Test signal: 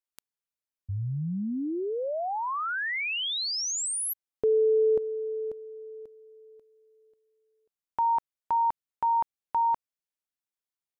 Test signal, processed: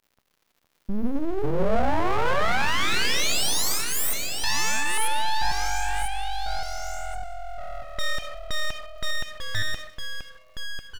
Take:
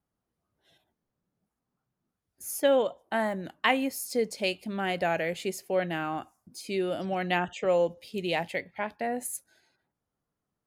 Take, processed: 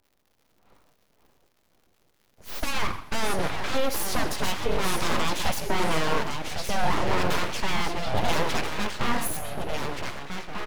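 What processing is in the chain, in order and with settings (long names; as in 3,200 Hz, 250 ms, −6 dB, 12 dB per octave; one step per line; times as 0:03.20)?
one scale factor per block 7 bits
in parallel at −10.5 dB: sine wavefolder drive 18 dB, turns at −9 dBFS
on the sum: brickwall limiter −19.5 dBFS
low-pass that shuts in the quiet parts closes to 800 Hz, open at −22.5 dBFS
high-pass filter 44 Hz
parametric band 360 Hz +3.5 dB 0.83 octaves
on a send: repeating echo 128 ms, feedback 53%, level −20 dB
on the sum: surface crackle 160 per second −49 dBFS
reverb whose tail is shaped and stops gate 170 ms flat, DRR 10.5 dB
delay with pitch and tempo change per echo 436 ms, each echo −2 semitones, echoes 3, each echo −6 dB
parametric band 7,900 Hz −13.5 dB 0.2 octaves
full-wave rectification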